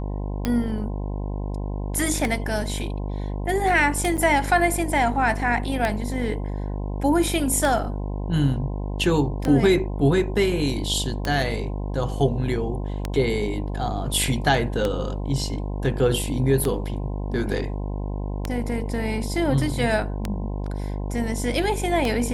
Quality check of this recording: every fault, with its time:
buzz 50 Hz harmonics 21 -28 dBFS
tick 33 1/3 rpm -10 dBFS
4.17–4.18 gap 7.4 ms

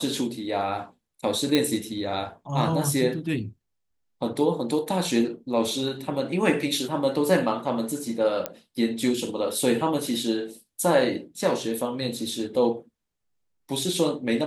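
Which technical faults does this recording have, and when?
1.55 pop -8 dBFS
8.46 pop -11 dBFS

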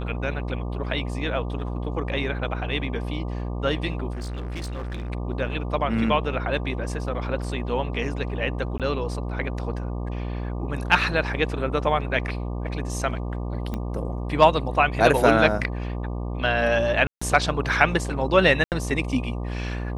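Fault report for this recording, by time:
buzz 60 Hz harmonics 20 -29 dBFS
4.11–5.1 clipped -28 dBFS
8.78–8.8 gap 17 ms
13.74 pop -17 dBFS
17.07–17.21 gap 0.145 s
18.64–18.72 gap 78 ms

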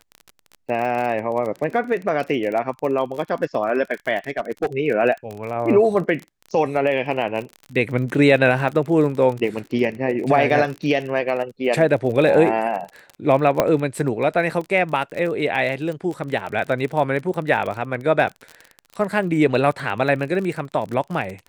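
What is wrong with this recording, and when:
crackle 33/s -27 dBFS
4.28–4.66 clipped -16 dBFS
13.6 pop -3 dBFS

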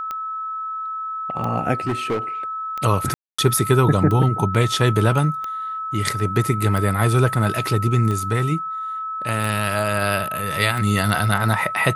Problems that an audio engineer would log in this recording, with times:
tick 45 rpm -15 dBFS
tone 1300 Hz -25 dBFS
1.87–2.19 clipped -18 dBFS
3.14–3.38 gap 0.245 s

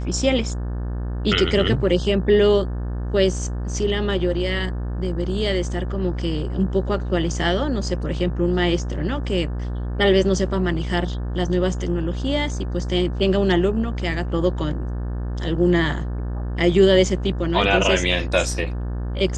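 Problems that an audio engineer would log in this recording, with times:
buzz 60 Hz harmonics 30 -26 dBFS

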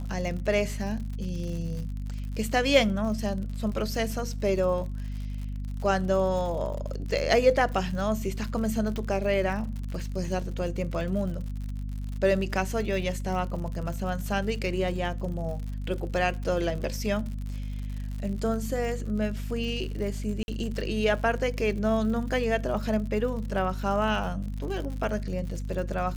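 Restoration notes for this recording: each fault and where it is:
crackle 77/s -35 dBFS
hum 50 Hz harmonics 5 -33 dBFS
8.96 pop -21 dBFS
20.43–20.48 gap 51 ms

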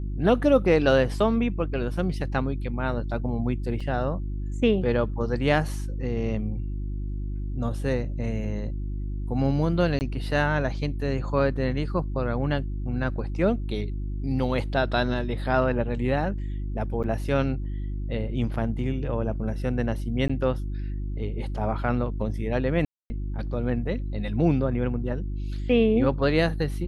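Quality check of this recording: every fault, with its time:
hum 50 Hz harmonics 7 -30 dBFS
3.8 gap 4.7 ms
9.99–10.01 gap 19 ms
17.03–17.04 gap 8.4 ms
20.28–20.3 gap 15 ms
22.85–23.1 gap 0.25 s

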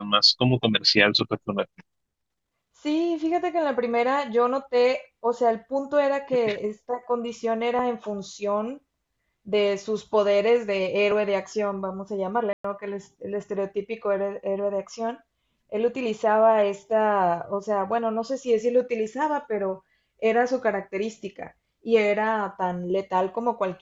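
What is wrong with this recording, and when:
12.53–12.64 gap 0.114 s

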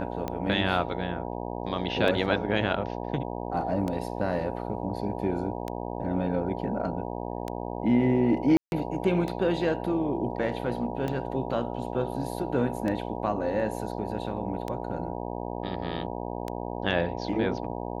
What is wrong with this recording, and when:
buzz 60 Hz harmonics 16 -34 dBFS
tick 33 1/3 rpm -18 dBFS
8.57–8.72 gap 0.151 s

